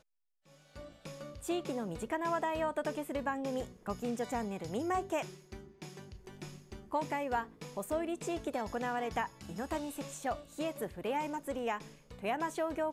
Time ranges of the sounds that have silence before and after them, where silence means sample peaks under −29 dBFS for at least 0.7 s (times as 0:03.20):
0:01.49–0:05.21